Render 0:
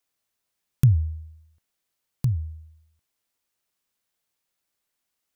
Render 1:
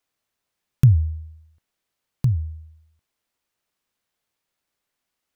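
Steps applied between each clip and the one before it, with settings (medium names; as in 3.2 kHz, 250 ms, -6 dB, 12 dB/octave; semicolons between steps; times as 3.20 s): treble shelf 5 kHz -7.5 dB; trim +3.5 dB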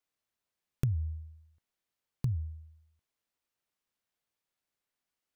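compression 6:1, threshold -18 dBFS, peak gain reduction 9 dB; trim -8.5 dB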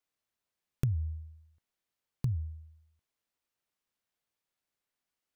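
no audible change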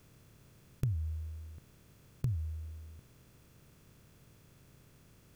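spectral levelling over time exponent 0.4; trim -4.5 dB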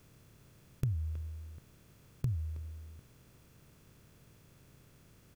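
speakerphone echo 320 ms, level -11 dB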